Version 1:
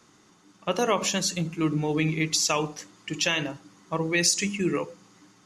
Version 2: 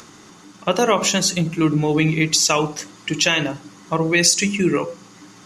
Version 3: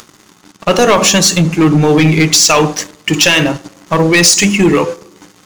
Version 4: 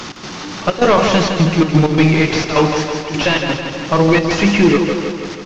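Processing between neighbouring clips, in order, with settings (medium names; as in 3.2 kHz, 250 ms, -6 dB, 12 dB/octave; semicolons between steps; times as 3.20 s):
in parallel at -1.5 dB: compression, threshold -32 dBFS, peak gain reduction 14 dB; on the sum: de-hum 127.8 Hz, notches 11; upward compressor, threshold -44 dBFS; trim +5.5 dB
waveshaping leveller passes 3; on a send at -21 dB: reverberation RT60 1.0 s, pre-delay 3 ms
one-bit delta coder 32 kbps, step -20.5 dBFS; trance gate "x.xxxx.xxxx.xx." 129 bpm -12 dB; on a send: feedback delay 162 ms, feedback 59%, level -6.5 dB; on the sum: trim -1.5 dB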